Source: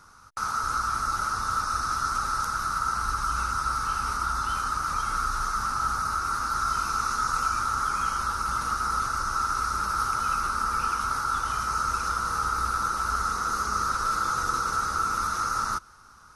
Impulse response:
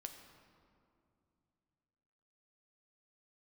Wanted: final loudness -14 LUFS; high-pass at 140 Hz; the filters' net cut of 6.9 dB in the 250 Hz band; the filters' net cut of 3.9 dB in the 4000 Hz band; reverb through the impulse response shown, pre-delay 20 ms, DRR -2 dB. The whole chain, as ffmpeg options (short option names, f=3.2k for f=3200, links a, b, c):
-filter_complex "[0:a]highpass=140,equalizer=f=250:t=o:g=-8.5,equalizer=f=4k:t=o:g=-5.5,asplit=2[a][b];[1:a]atrim=start_sample=2205,adelay=20[c];[b][c]afir=irnorm=-1:irlink=0,volume=6.5dB[d];[a][d]amix=inputs=2:normalize=0,volume=9.5dB"